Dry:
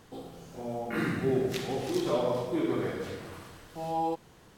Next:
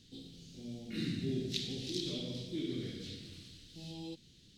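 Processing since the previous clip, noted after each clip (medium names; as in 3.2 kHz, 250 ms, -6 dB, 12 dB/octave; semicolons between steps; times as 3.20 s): FFT filter 270 Hz 0 dB, 960 Hz -30 dB, 3.9 kHz +11 dB, 13 kHz -10 dB; trim -4.5 dB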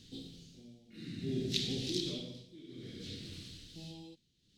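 tremolo 0.58 Hz, depth 89%; trim +4 dB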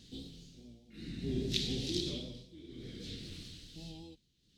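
octave divider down 2 oct, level -6 dB; vibrato 5 Hz 44 cents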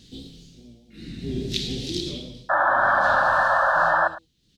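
painted sound noise, 2.49–4.08 s, 530–1800 Hz -26 dBFS; delay 107 ms -16.5 dB; trim +6.5 dB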